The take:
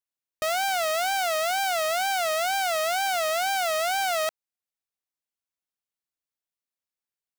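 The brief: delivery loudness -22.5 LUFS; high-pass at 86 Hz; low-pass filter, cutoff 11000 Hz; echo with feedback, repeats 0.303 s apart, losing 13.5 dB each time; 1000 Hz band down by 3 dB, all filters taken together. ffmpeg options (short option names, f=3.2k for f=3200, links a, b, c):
-af "highpass=86,lowpass=11k,equalizer=f=1k:t=o:g=-5,aecho=1:1:303|606:0.211|0.0444,volume=4dB"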